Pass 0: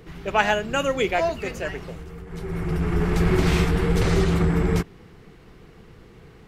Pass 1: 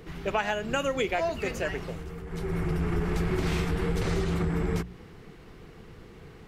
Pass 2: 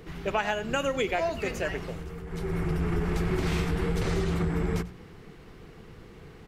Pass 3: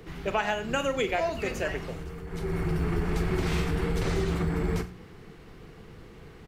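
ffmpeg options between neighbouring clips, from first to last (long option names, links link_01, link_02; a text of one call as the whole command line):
ffmpeg -i in.wav -af "bandreject=frequency=60:width_type=h:width=6,bandreject=frequency=120:width_type=h:width=6,bandreject=frequency=180:width_type=h:width=6,acompressor=threshold=-24dB:ratio=6" out.wav
ffmpeg -i in.wav -filter_complex "[0:a]asplit=2[link_01][link_02];[link_02]adelay=93.29,volume=-17dB,highshelf=frequency=4000:gain=-2.1[link_03];[link_01][link_03]amix=inputs=2:normalize=0" out.wav
ffmpeg -i in.wav -filter_complex "[0:a]acrossover=split=120[link_01][link_02];[link_01]acrusher=samples=10:mix=1:aa=0.000001[link_03];[link_03][link_02]amix=inputs=2:normalize=0,asplit=2[link_04][link_05];[link_05]adelay=44,volume=-12.5dB[link_06];[link_04][link_06]amix=inputs=2:normalize=0" out.wav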